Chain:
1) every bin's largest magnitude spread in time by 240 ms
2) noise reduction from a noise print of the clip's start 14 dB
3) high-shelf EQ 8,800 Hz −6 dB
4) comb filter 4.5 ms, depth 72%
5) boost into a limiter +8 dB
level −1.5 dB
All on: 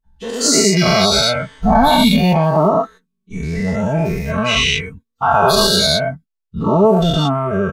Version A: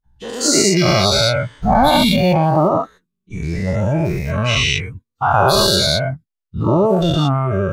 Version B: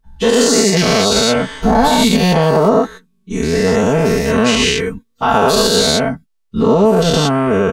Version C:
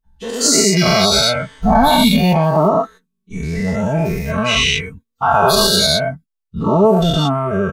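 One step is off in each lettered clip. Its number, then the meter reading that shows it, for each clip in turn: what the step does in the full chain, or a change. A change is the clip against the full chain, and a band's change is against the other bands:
4, 125 Hz band +2.5 dB
2, 500 Hz band +3.5 dB
3, 8 kHz band +1.5 dB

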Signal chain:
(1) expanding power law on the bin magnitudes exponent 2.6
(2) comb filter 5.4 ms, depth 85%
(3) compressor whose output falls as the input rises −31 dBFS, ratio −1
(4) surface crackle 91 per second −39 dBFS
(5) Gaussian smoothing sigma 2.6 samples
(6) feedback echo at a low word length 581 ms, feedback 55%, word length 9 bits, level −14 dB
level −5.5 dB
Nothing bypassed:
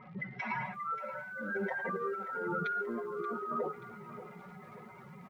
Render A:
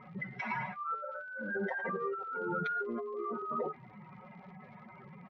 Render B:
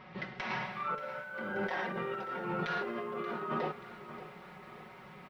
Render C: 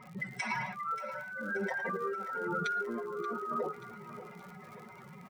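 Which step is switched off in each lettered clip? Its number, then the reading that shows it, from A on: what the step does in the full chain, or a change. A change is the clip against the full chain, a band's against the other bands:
6, change in momentary loudness spread +2 LU
1, 4 kHz band +11.5 dB
5, 4 kHz band +8.0 dB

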